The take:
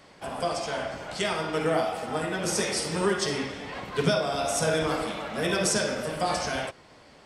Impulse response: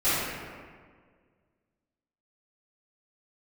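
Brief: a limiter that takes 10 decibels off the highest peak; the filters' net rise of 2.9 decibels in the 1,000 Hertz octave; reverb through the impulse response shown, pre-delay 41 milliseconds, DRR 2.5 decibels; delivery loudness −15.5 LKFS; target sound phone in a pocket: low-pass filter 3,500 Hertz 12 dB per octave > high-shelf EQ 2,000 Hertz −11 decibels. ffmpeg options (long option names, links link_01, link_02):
-filter_complex "[0:a]equalizer=frequency=1000:width_type=o:gain=7,alimiter=limit=-20dB:level=0:latency=1,asplit=2[link_01][link_02];[1:a]atrim=start_sample=2205,adelay=41[link_03];[link_02][link_03]afir=irnorm=-1:irlink=0,volume=-18dB[link_04];[link_01][link_04]amix=inputs=2:normalize=0,lowpass=3500,highshelf=frequency=2000:gain=-11,volume=14dB"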